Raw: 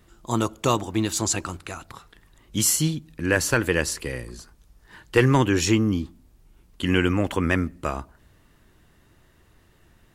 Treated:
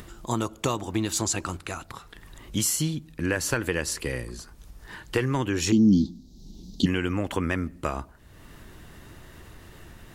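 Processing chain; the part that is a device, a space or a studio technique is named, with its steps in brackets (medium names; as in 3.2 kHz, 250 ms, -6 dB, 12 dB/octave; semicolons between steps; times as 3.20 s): upward and downward compression (upward compressor, threshold -36 dBFS; compression 6:1, threshold -23 dBFS, peak gain reduction 10.5 dB); 5.72–6.86 s: FFT filter 130 Hz 0 dB, 190 Hz +14 dB, 540 Hz -4 dB, 800 Hz -5 dB, 1.5 kHz -30 dB, 2.6 kHz -15 dB, 3.9 kHz +12 dB, 6.2 kHz +10 dB, 9 kHz -9 dB, 15 kHz -4 dB; trim +1 dB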